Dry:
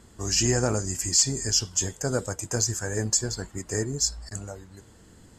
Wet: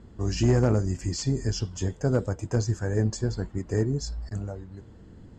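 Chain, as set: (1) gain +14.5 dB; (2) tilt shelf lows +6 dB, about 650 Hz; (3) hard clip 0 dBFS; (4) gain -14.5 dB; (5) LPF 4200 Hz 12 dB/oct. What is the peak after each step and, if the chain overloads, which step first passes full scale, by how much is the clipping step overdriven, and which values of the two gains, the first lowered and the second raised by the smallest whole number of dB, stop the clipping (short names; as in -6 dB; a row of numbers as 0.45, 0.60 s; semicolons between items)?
+6.0, +5.5, 0.0, -14.5, -14.5 dBFS; step 1, 5.5 dB; step 1 +8.5 dB, step 4 -8.5 dB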